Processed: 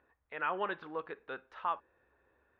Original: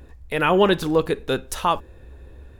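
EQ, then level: band-pass filter 1.4 kHz, Q 1.3; distance through air 300 m; -9.0 dB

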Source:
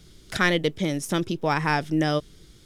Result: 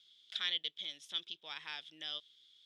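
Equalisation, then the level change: band-pass filter 3.4 kHz, Q 8.6; +1.5 dB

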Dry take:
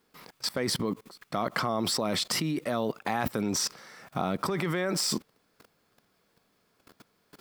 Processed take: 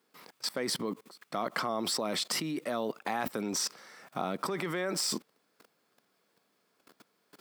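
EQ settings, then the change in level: high-pass 210 Hz 12 dB/octave; peaking EQ 8.3 kHz +2 dB 0.21 oct; -3.0 dB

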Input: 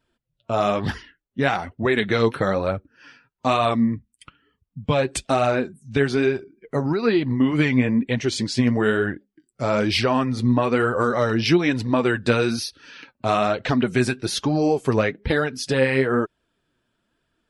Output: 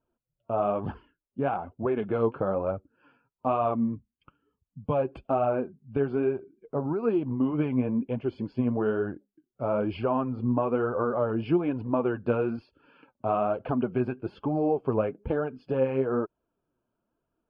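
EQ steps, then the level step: boxcar filter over 23 samples; distance through air 430 m; bass shelf 430 Hz -11 dB; +2.0 dB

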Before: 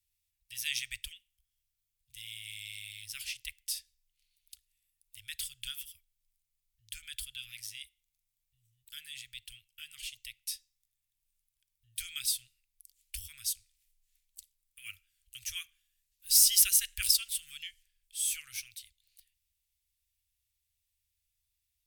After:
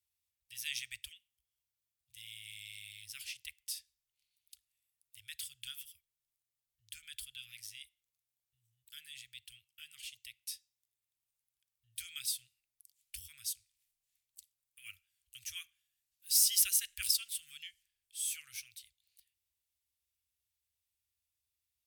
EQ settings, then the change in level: high-pass 76 Hz 12 dB/octave; -5.0 dB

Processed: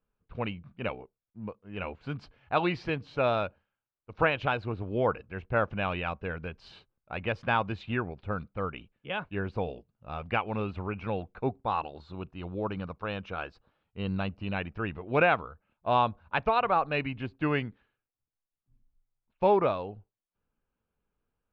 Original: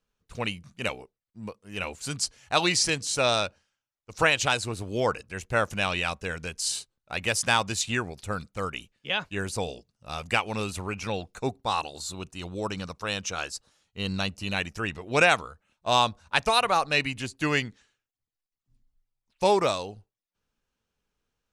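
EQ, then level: low-pass 2.8 kHz 12 dB/octave; distance through air 370 m; peaking EQ 1.9 kHz -6 dB 0.21 oct; 0.0 dB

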